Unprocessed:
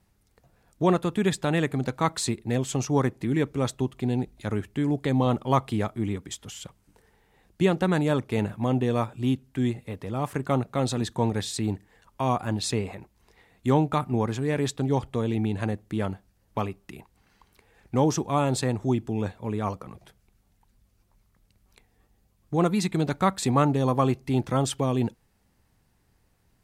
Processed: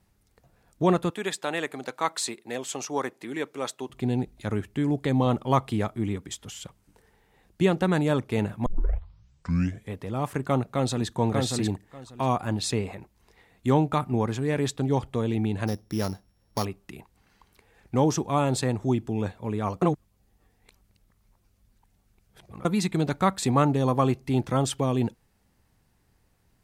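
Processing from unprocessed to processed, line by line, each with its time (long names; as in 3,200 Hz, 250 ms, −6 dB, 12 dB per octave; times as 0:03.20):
0:01.10–0:03.90: Bessel high-pass filter 520 Hz
0:08.66: tape start 1.30 s
0:10.65–0:11.16: delay throw 590 ms, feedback 15%, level −2 dB
0:15.67–0:16.65: samples sorted by size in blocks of 8 samples
0:19.82–0:22.65: reverse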